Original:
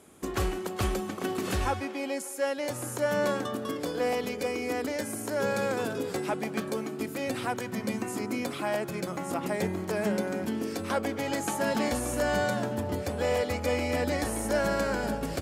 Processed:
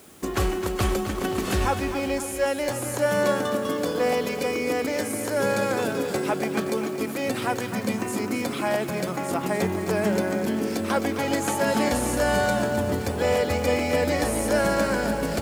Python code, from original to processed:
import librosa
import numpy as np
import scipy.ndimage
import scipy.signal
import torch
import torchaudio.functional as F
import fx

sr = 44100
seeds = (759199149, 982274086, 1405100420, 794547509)

p1 = fx.quant_dither(x, sr, seeds[0], bits=8, dither='triangular')
p2 = x + (p1 * 10.0 ** (-8.5 / 20.0))
p3 = fx.echo_feedback(p2, sr, ms=261, feedback_pct=57, wet_db=-9.5)
y = p3 * 10.0 ** (2.0 / 20.0)